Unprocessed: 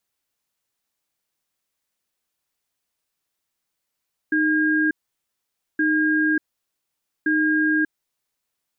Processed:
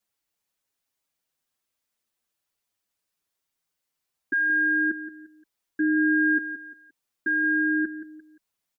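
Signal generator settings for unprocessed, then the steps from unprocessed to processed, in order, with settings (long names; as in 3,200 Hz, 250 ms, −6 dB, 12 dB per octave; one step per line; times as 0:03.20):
tone pair in a cadence 309 Hz, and 1,620 Hz, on 0.59 s, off 0.88 s, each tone −19.5 dBFS 3.88 s
on a send: repeating echo 174 ms, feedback 34%, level −12.5 dB
on the sum: barber-pole flanger 6.6 ms −0.37 Hz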